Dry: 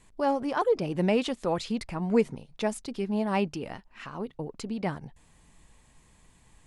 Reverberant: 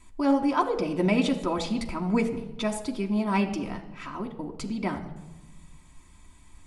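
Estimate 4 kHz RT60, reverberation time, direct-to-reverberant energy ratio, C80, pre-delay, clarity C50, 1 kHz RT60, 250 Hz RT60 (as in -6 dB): 0.75 s, 1.1 s, 1.5 dB, 13.5 dB, 3 ms, 12.0 dB, 1.0 s, 1.6 s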